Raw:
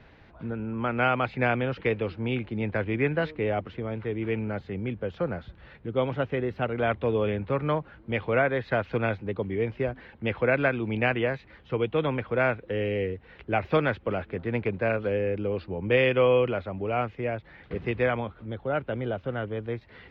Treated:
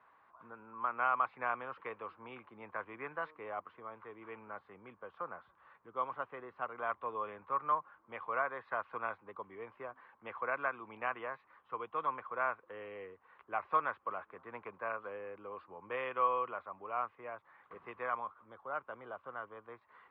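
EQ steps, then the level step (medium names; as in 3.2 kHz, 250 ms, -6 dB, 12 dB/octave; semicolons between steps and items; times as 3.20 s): band-pass filter 1.1 kHz, Q 7.3; +4.5 dB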